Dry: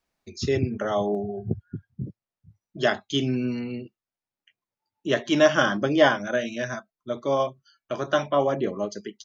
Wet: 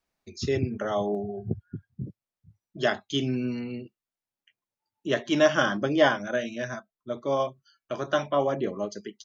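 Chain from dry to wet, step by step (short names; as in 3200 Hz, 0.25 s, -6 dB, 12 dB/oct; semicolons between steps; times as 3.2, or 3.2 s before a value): 5.08–7.47 mismatched tape noise reduction decoder only; gain -2.5 dB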